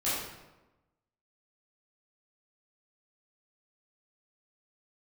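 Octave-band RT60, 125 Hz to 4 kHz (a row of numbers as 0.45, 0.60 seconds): 1.2, 1.2, 1.1, 1.0, 0.85, 0.70 seconds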